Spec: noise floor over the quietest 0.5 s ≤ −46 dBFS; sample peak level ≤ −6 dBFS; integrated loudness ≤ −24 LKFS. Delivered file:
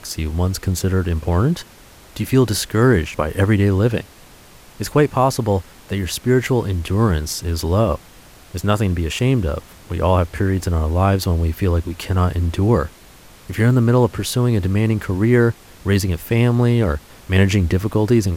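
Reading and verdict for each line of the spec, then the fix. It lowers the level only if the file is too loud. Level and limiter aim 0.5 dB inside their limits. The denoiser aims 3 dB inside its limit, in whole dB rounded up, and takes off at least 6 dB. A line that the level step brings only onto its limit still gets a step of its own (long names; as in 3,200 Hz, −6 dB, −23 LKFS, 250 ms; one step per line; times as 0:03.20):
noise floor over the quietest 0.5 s −44 dBFS: out of spec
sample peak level −4.0 dBFS: out of spec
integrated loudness −18.5 LKFS: out of spec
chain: level −6 dB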